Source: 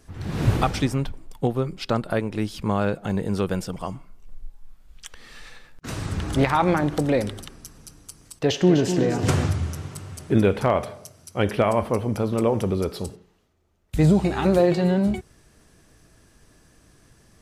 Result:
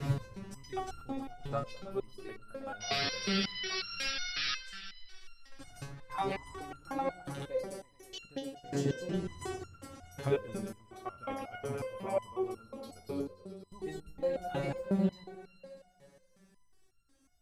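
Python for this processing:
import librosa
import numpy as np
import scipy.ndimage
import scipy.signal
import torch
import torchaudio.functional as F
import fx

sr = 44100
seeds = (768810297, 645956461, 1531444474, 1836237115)

p1 = fx.block_reorder(x, sr, ms=127.0, group=4)
p2 = fx.hum_notches(p1, sr, base_hz=50, count=4)
p3 = fx.spec_paint(p2, sr, seeds[0], shape='noise', start_s=2.8, length_s=1.75, low_hz=1200.0, high_hz=5800.0, level_db=-23.0)
p4 = p3 + fx.echo_opening(p3, sr, ms=107, hz=750, octaves=1, feedback_pct=70, wet_db=-6, dry=0)
y = fx.resonator_held(p4, sr, hz=5.5, low_hz=140.0, high_hz=1400.0)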